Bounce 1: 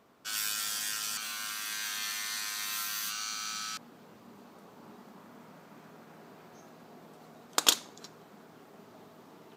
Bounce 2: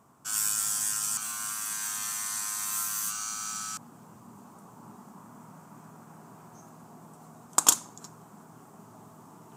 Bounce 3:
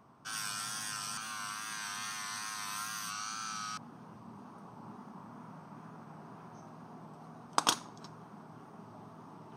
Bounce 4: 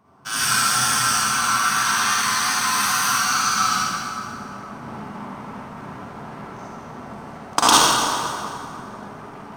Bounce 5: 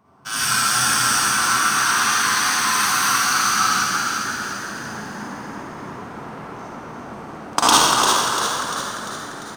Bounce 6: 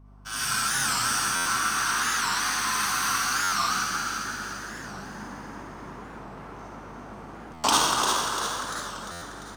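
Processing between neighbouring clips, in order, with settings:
graphic EQ 125/500/1000/2000/4000/8000 Hz +9/-7/+7/-7/-11/+11 dB; reverse; upward compressor, threshold -50 dBFS; reverse; trim +1.5 dB
Savitzky-Golay filter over 15 samples; wow and flutter 43 cents
waveshaping leveller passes 2; reverberation RT60 2.9 s, pre-delay 42 ms, DRR -8.5 dB; trim +4.5 dB
frequency-shifting echo 346 ms, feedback 54%, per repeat +84 Hz, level -5 dB
hum 50 Hz, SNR 22 dB; buffer glitch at 1.35/3.43/7.54/9.11 s, samples 512; warped record 45 rpm, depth 160 cents; trim -7.5 dB

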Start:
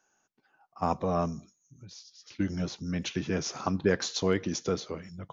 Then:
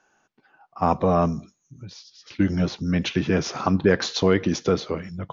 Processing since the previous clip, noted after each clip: low-pass 4.1 kHz 12 dB/octave; in parallel at +1 dB: peak limiter -19.5 dBFS, peak gain reduction 7.5 dB; on the sum: trim +3 dB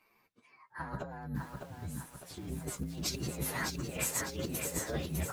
frequency axis rescaled in octaves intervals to 123%; compressor with a negative ratio -32 dBFS, ratio -1; bit-crushed delay 604 ms, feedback 55%, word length 8-bit, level -4 dB; trim -7 dB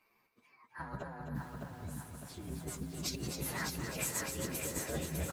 feedback delay 261 ms, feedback 53%, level -7 dB; trim -3 dB

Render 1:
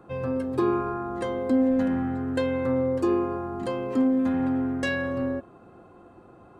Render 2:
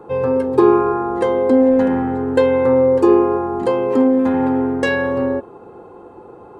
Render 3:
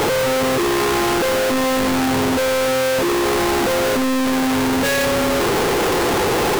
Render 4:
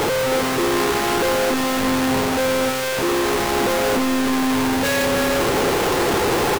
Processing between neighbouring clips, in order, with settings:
small resonant body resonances 450/860 Hz, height 15 dB, ringing for 30 ms; dynamic bell 2 kHz, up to +3 dB, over -35 dBFS, Q 1; trim +4.5 dB
one-bit comparator; trim -1.5 dB
delay 317 ms -6 dB; trim -2 dB

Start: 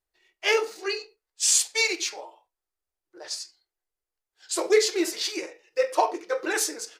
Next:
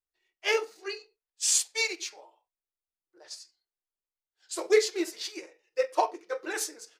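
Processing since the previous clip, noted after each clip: upward expansion 1.5:1, over -35 dBFS; trim -1.5 dB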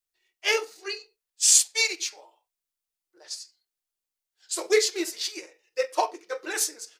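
treble shelf 2.5 kHz +8 dB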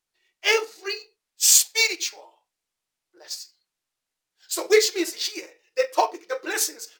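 decimation joined by straight lines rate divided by 2×; trim +4 dB

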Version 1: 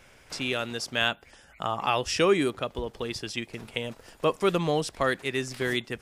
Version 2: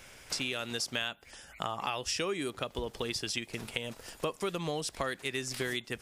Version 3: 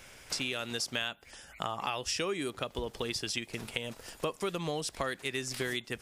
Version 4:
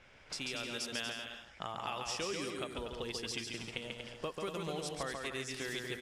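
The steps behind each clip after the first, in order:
treble shelf 3 kHz +8 dB; compression 6:1, threshold -31 dBFS, peak gain reduction 14 dB
no audible change
level-controlled noise filter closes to 2.9 kHz, open at -30 dBFS; bouncing-ball echo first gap 140 ms, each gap 0.7×, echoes 5; trim -6.5 dB

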